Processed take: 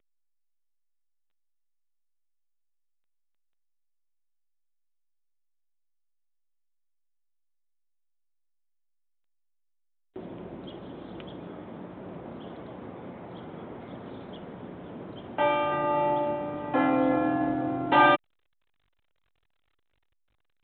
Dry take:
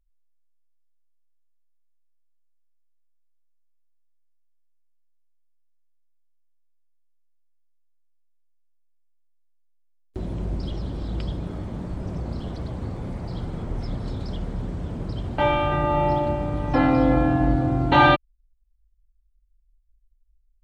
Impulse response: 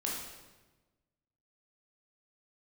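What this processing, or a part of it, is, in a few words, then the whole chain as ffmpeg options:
telephone: -af "highpass=270,lowpass=3.6k,volume=-3dB" -ar 8000 -c:a pcm_alaw

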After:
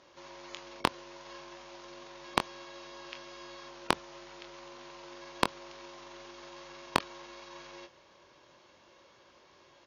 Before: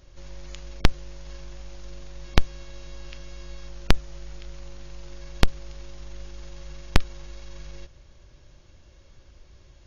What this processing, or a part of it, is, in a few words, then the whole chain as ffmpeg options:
intercom: -filter_complex "[0:a]highpass=330,lowpass=4.9k,equalizer=f=1k:t=o:w=0.43:g=8,asoftclip=type=tanh:threshold=-8.5dB,asplit=2[a][b];[b]adelay=23,volume=-8.5dB[c];[a][c]amix=inputs=2:normalize=0,volume=1dB"

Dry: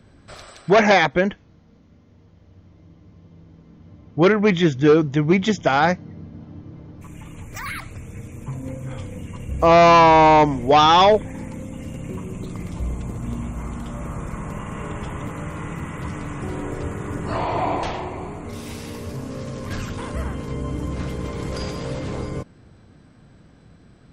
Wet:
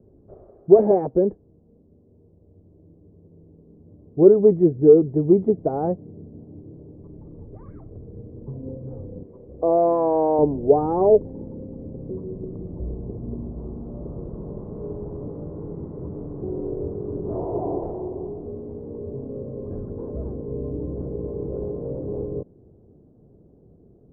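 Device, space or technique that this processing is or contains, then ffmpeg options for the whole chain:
under water: -filter_complex "[0:a]lowpass=f=670:w=0.5412,lowpass=f=670:w=1.3066,equalizer=f=400:t=o:w=0.52:g=11.5,asettb=1/sr,asplit=3[a][b][c];[a]atrim=end=9.234[d];[b]atrim=start=9.23:end=10.39,asetpts=PTS-STARTPTS,afade=t=in:d=0.004:c=qsin,afade=t=out:st=1.156:d=0.004:c=qsin,bass=f=250:g=-14,treble=f=4k:g=9[e];[c]atrim=start=10.386[f];[d][e]acrossfade=d=0.004:c1=hsin:c2=qsin[g];[g][f]acrossfade=d=0.004:c1=qsin:c2=hsin,volume=-4.5dB"

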